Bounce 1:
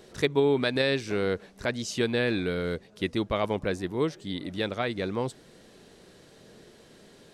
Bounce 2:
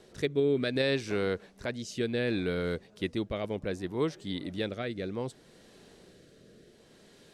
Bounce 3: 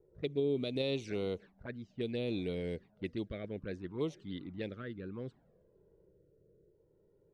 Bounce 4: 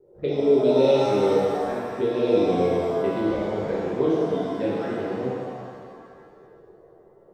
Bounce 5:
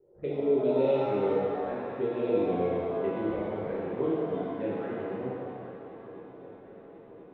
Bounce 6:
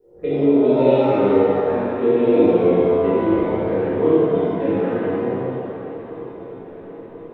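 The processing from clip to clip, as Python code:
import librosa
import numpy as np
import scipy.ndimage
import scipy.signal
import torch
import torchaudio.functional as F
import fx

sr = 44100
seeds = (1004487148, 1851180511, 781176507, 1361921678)

y1 = fx.rotary(x, sr, hz=0.65)
y1 = F.gain(torch.from_numpy(y1), -1.5).numpy()
y2 = fx.env_flanger(y1, sr, rest_ms=2.3, full_db=-26.5)
y2 = fx.env_lowpass(y2, sr, base_hz=410.0, full_db=-27.0)
y2 = F.gain(torch.from_numpy(y2), -5.0).numpy()
y3 = fx.peak_eq(y2, sr, hz=510.0, db=12.0, octaves=2.7)
y3 = fx.rev_shimmer(y3, sr, seeds[0], rt60_s=2.0, semitones=7, shimmer_db=-8, drr_db=-8.0)
y3 = F.gain(torch.from_numpy(y3), -3.0).numpy()
y4 = scipy.signal.sosfilt(scipy.signal.butter(4, 2900.0, 'lowpass', fs=sr, output='sos'), y3)
y4 = fx.echo_swing(y4, sr, ms=1032, ratio=3, feedback_pct=63, wet_db=-17.5)
y4 = F.gain(torch.from_numpy(y4), -7.0).numpy()
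y5 = fx.room_shoebox(y4, sr, seeds[1], volume_m3=260.0, walls='mixed', distance_m=1.8)
y5 = F.gain(torch.from_numpy(y5), 5.5).numpy()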